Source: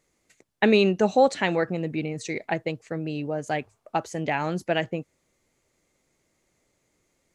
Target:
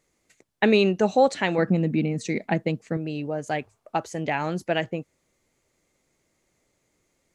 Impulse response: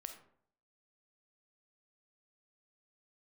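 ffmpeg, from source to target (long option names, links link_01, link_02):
-filter_complex "[0:a]asettb=1/sr,asplit=3[link_01][link_02][link_03];[link_01]atrim=end=1.584[link_04];[link_02]atrim=start=1.58:end=2.97,asetpts=PTS-STARTPTS,afade=type=in:duration=0.004:curve=qsin,afade=type=out:start_time=1.386:duration=0.004:curve=qsin,equalizer=frequency=210:width=1.7:gain=13.5[link_05];[link_03]atrim=start=2.966[link_06];[link_04][link_05]acrossfade=duration=0.004:curve1=hsin:curve2=qsin[link_07];[link_07][link_06]acrossfade=duration=0.004:curve1=qsin:curve2=hsin"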